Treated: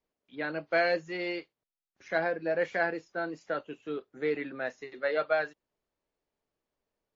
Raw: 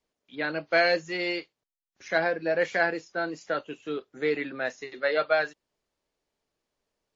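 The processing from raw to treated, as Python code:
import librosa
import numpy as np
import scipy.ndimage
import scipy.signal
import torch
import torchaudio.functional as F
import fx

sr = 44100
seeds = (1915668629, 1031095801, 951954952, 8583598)

y = fx.high_shelf(x, sr, hz=3400.0, db=-10.0)
y = y * 10.0 ** (-3.0 / 20.0)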